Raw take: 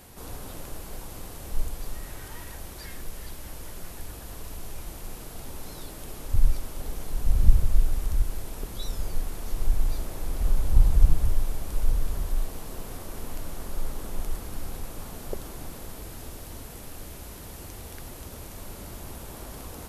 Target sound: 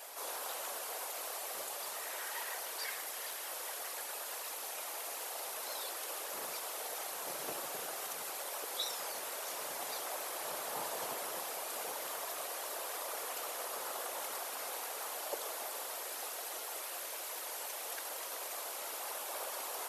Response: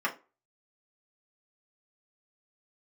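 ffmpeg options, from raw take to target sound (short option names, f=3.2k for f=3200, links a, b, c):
-filter_complex "[0:a]asplit=2[a][b];[1:a]atrim=start_sample=2205,afade=t=out:st=0.16:d=0.01,atrim=end_sample=7497,adelay=119[c];[b][c]afir=irnorm=-1:irlink=0,volume=-21.5dB[d];[a][d]amix=inputs=2:normalize=0,afftfilt=real='hypot(re,im)*cos(2*PI*random(0))':imag='hypot(re,im)*sin(2*PI*random(1))':win_size=512:overlap=0.75,highpass=f=540:w=0.5412,highpass=f=540:w=1.3066,volume=9.5dB"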